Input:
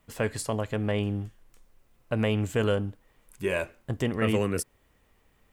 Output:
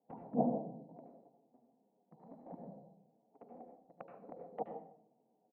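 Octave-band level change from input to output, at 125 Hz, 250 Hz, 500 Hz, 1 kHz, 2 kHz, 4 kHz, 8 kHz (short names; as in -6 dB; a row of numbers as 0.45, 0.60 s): -22.5 dB, -12.0 dB, -15.0 dB, -6.5 dB, -38.0 dB, under -40 dB, under -40 dB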